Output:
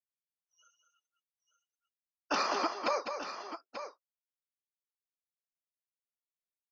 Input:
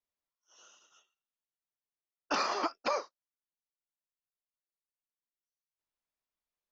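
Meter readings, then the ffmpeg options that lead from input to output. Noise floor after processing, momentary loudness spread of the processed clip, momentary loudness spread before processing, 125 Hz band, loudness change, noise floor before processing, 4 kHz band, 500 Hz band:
under -85 dBFS, 14 LU, 4 LU, no reading, -1.5 dB, under -85 dBFS, +1.0 dB, +1.0 dB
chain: -filter_complex "[0:a]afftdn=nr=32:nf=-53,asplit=2[s0][s1];[s1]aecho=0:1:202|887:0.447|0.299[s2];[s0][s2]amix=inputs=2:normalize=0"

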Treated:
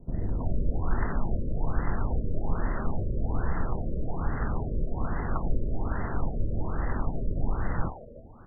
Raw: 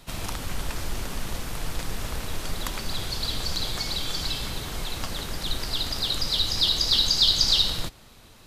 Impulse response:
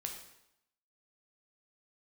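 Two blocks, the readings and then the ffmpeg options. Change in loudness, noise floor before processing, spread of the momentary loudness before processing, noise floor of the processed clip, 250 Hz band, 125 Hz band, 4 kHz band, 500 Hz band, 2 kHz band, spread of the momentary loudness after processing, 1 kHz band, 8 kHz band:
-7.0 dB, -51 dBFS, 15 LU, -45 dBFS, +4.5 dB, +5.0 dB, under -40 dB, +2.5 dB, -5.0 dB, 2 LU, +1.0 dB, under -40 dB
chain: -filter_complex "[0:a]acrossover=split=540|2800[s0][s1][s2];[s2]adelay=50[s3];[s1]adelay=320[s4];[s0][s4][s3]amix=inputs=3:normalize=0,asplit=2[s5][s6];[1:a]atrim=start_sample=2205,atrim=end_sample=6174,asetrate=88200,aresample=44100[s7];[s6][s7]afir=irnorm=-1:irlink=0,volume=1.26[s8];[s5][s8]amix=inputs=2:normalize=0,afftfilt=real='re*lt(b*sr/1024,600*pow(2100/600,0.5+0.5*sin(2*PI*1.2*pts/sr)))':imag='im*lt(b*sr/1024,600*pow(2100/600,0.5+0.5*sin(2*PI*1.2*pts/sr)))':win_size=1024:overlap=0.75,volume=1.19"

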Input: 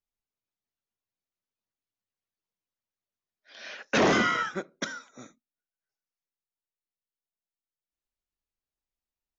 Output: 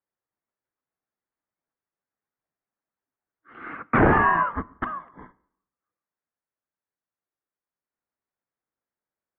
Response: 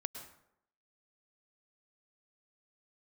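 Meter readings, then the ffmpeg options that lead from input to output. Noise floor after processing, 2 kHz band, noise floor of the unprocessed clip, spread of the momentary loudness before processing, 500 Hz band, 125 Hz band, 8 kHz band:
under -85 dBFS, +3.5 dB, under -85 dBFS, 20 LU, +2.0 dB, +10.5 dB, no reading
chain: -filter_complex "[0:a]asplit=2[s0][s1];[1:a]atrim=start_sample=2205[s2];[s1][s2]afir=irnorm=-1:irlink=0,volume=0.15[s3];[s0][s3]amix=inputs=2:normalize=0,highpass=f=430:t=q:w=0.5412,highpass=f=430:t=q:w=1.307,lowpass=f=2200:t=q:w=0.5176,lowpass=f=2200:t=q:w=0.7071,lowpass=f=2200:t=q:w=1.932,afreqshift=-310,volume=2.11"

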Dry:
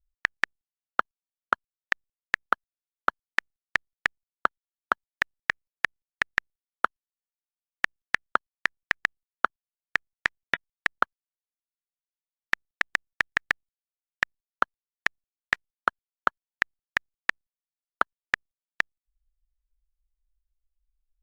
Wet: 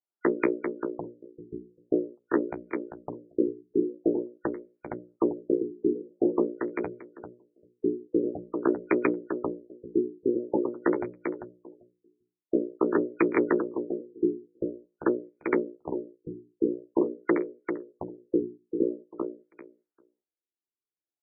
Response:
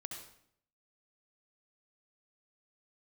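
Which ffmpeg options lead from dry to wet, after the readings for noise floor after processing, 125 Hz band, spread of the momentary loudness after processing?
under -85 dBFS, +8.0 dB, 15 LU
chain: -filter_complex "[0:a]afftfilt=real='real(if(lt(b,272),68*(eq(floor(b/68),0)*1+eq(floor(b/68),1)*3+eq(floor(b/68),2)*0+eq(floor(b/68),3)*2)+mod(b,68),b),0)':imag='imag(if(lt(b,272),68*(eq(floor(b/68),0)*1+eq(floor(b/68),1)*3+eq(floor(b/68),2)*0+eq(floor(b/68),3)*2)+mod(b,68),b),0)':win_size=2048:overlap=0.75,bandreject=f=60:t=h:w=6,bandreject=f=120:t=h:w=6,bandreject=f=180:t=h:w=6,bandreject=f=240:t=h:w=6,bandreject=f=300:t=h:w=6,bandreject=f=360:t=h:w=6,bandreject=f=420:t=h:w=6,bandreject=f=480:t=h:w=6,bandreject=f=540:t=h:w=6,bandreject=f=600:t=h:w=6,agate=range=0.447:threshold=0.00251:ratio=16:detection=peak,acrossover=split=2700[s0][s1];[s0]aeval=exprs='0.501*sin(PI/2*5.01*val(0)/0.501)':c=same[s2];[s1]acontrast=88[s3];[s2][s3]amix=inputs=2:normalize=0,flanger=delay=5.7:depth=9.2:regen=-24:speed=0.98:shape=triangular,adynamicsmooth=sensitivity=1:basefreq=4900,highpass=320,equalizer=f=340:t=q:w=4:g=7,equalizer=f=530:t=q:w=4:g=-4,equalizer=f=1100:t=q:w=4:g=-8,equalizer=f=1700:t=q:w=4:g=-4,lowpass=f=8100:w=0.5412,lowpass=f=8100:w=1.3066,aecho=1:1:394|788|1182:0.447|0.0715|0.0114,afftfilt=real='re*lt(b*sr/1024,440*pow(2500/440,0.5+0.5*sin(2*PI*0.47*pts/sr)))':imag='im*lt(b*sr/1024,440*pow(2500/440,0.5+0.5*sin(2*PI*0.47*pts/sr)))':win_size=1024:overlap=0.75"

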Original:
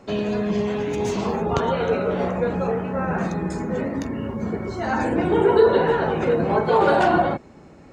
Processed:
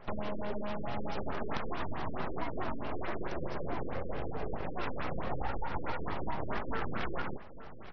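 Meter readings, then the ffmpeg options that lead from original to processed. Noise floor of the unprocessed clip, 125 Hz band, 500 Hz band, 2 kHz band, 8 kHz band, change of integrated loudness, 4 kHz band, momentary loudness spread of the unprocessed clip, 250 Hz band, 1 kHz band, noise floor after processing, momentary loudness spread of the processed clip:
-46 dBFS, -14.0 dB, -19.5 dB, -13.5 dB, no reading, -17.0 dB, -12.5 dB, 10 LU, -17.0 dB, -15.0 dB, -44 dBFS, 2 LU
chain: -af "highpass=130,acompressor=threshold=0.0398:ratio=6,aresample=16000,aeval=exprs='abs(val(0))':c=same,aresample=44100,aecho=1:1:848:0.15,afftfilt=real='re*lt(b*sr/1024,520*pow(6100/520,0.5+0.5*sin(2*PI*4.6*pts/sr)))':imag='im*lt(b*sr/1024,520*pow(6100/520,0.5+0.5*sin(2*PI*4.6*pts/sr)))':win_size=1024:overlap=0.75,volume=0.841"

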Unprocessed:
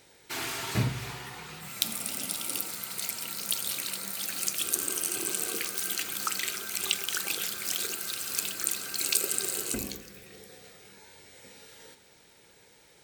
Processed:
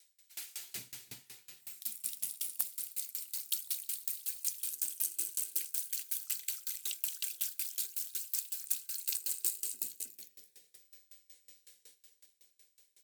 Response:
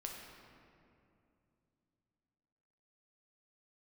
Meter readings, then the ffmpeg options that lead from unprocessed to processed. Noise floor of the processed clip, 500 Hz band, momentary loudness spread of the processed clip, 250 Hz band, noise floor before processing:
-73 dBFS, under -20 dB, 12 LU, under -25 dB, -59 dBFS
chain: -filter_complex "[0:a]aderivative,aecho=1:1:312:0.531,acrossover=split=410|440|3500[s0][s1][s2][s3];[s0]dynaudnorm=f=270:g=5:m=3.98[s4];[s2]equalizer=f=1100:t=o:w=0.74:g=-8[s5];[s4][s1][s5][s3]amix=inputs=4:normalize=0,asoftclip=type=tanh:threshold=0.266,aeval=exprs='val(0)*pow(10,-26*if(lt(mod(5.4*n/s,1),2*abs(5.4)/1000),1-mod(5.4*n/s,1)/(2*abs(5.4)/1000),(mod(5.4*n/s,1)-2*abs(5.4)/1000)/(1-2*abs(5.4)/1000))/20)':c=same"

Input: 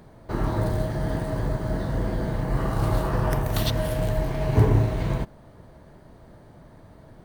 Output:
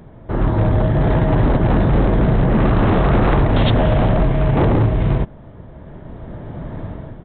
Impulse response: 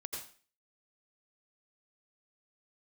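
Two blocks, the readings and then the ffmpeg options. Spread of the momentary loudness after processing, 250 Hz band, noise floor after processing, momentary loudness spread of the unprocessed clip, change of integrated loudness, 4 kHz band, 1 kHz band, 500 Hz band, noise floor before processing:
16 LU, +11.5 dB, -40 dBFS, 7 LU, +9.0 dB, +5.5 dB, +10.0 dB, +9.0 dB, -50 dBFS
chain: -af "lowshelf=f=450:g=6.5,dynaudnorm=f=570:g=3:m=5.01,aresample=8000,aeval=exprs='0.266*(abs(mod(val(0)/0.266+3,4)-2)-1)':c=same,aresample=44100,volume=1.41"

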